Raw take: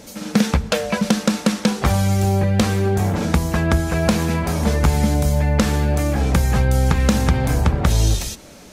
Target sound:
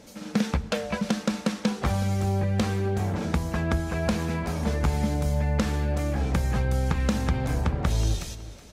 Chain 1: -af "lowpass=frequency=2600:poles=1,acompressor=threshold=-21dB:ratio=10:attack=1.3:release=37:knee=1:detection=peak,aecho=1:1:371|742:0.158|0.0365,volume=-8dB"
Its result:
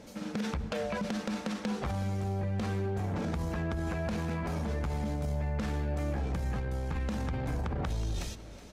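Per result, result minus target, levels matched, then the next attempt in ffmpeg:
downward compressor: peak gain reduction +13.5 dB; 8,000 Hz band −3.0 dB
-af "lowpass=frequency=2600:poles=1,aecho=1:1:371|742:0.158|0.0365,volume=-8dB"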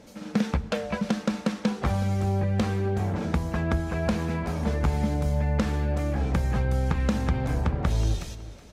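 8,000 Hz band −5.0 dB
-af "lowpass=frequency=5900:poles=1,aecho=1:1:371|742:0.158|0.0365,volume=-8dB"

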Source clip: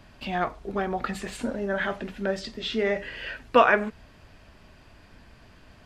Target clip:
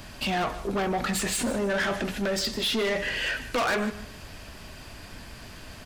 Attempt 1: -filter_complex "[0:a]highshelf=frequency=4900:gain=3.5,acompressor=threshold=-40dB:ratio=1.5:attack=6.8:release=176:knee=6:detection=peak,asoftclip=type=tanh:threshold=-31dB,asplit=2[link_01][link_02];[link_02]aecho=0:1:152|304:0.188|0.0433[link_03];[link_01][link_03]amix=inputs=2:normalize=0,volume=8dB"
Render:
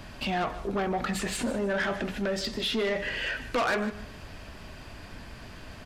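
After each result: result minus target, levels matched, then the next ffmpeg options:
8,000 Hz band −5.0 dB; downward compressor: peak gain reduction +3.5 dB
-filter_complex "[0:a]highshelf=frequency=4900:gain=13.5,acompressor=threshold=-40dB:ratio=1.5:attack=6.8:release=176:knee=6:detection=peak,asoftclip=type=tanh:threshold=-31dB,asplit=2[link_01][link_02];[link_02]aecho=0:1:152|304:0.188|0.0433[link_03];[link_01][link_03]amix=inputs=2:normalize=0,volume=8dB"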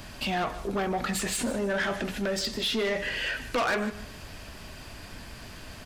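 downward compressor: peak gain reduction +4 dB
-filter_complex "[0:a]highshelf=frequency=4900:gain=13.5,acompressor=threshold=-28.5dB:ratio=1.5:attack=6.8:release=176:knee=6:detection=peak,asoftclip=type=tanh:threshold=-31dB,asplit=2[link_01][link_02];[link_02]aecho=0:1:152|304:0.188|0.0433[link_03];[link_01][link_03]amix=inputs=2:normalize=0,volume=8dB"

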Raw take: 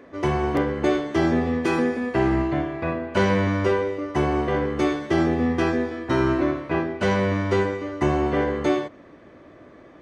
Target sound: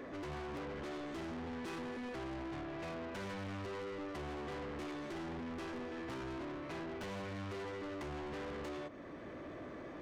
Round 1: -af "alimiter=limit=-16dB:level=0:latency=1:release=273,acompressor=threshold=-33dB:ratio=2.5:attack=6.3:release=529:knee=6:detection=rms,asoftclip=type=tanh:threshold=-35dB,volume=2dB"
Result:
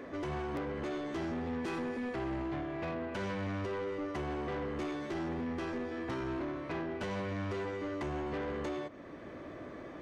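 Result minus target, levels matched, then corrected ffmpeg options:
soft clipping: distortion −5 dB
-af "alimiter=limit=-16dB:level=0:latency=1:release=273,acompressor=threshold=-33dB:ratio=2.5:attack=6.3:release=529:knee=6:detection=rms,asoftclip=type=tanh:threshold=-43.5dB,volume=2dB"

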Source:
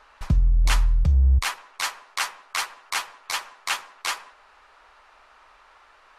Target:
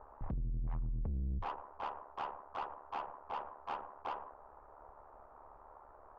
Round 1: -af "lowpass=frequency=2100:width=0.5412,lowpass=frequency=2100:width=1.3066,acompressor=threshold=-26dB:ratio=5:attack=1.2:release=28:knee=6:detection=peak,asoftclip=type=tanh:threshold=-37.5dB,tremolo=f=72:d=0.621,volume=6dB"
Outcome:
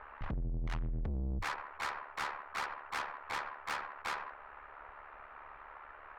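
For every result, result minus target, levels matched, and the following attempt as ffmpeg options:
2,000 Hz band +11.5 dB; downward compressor: peak gain reduction −6.5 dB
-af "lowpass=frequency=910:width=0.5412,lowpass=frequency=910:width=1.3066,acompressor=threshold=-26dB:ratio=5:attack=1.2:release=28:knee=6:detection=peak,asoftclip=type=tanh:threshold=-37.5dB,tremolo=f=72:d=0.621,volume=6dB"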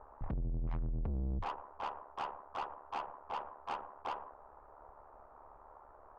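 downward compressor: peak gain reduction −6.5 dB
-af "lowpass=frequency=910:width=0.5412,lowpass=frequency=910:width=1.3066,acompressor=threshold=-34dB:ratio=5:attack=1.2:release=28:knee=6:detection=peak,asoftclip=type=tanh:threshold=-37.5dB,tremolo=f=72:d=0.621,volume=6dB"

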